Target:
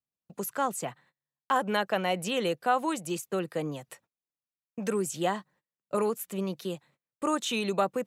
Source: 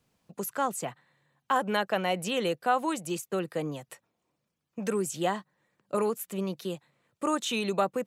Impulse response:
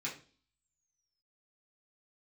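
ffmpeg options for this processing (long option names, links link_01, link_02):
-af "agate=range=-28dB:threshold=-58dB:ratio=16:detection=peak"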